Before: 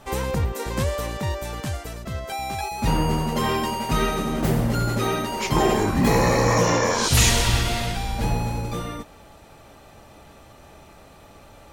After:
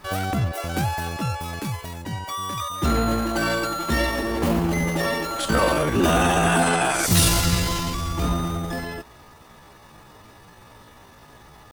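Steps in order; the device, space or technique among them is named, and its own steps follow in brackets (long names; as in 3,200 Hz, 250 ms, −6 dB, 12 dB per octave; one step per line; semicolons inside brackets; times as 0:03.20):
chipmunk voice (pitch shifter +6.5 semitones)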